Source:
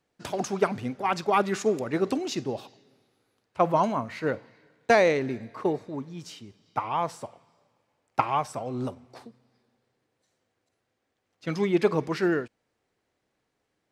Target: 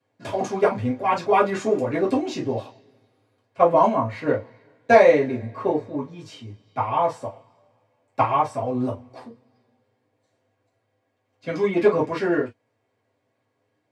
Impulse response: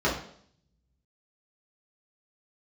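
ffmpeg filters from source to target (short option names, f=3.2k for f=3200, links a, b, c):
-filter_complex "[1:a]atrim=start_sample=2205,afade=t=out:st=0.15:d=0.01,atrim=end_sample=7056,asetrate=74970,aresample=44100[a];[0:a][a]afir=irnorm=-1:irlink=0,volume=-7dB"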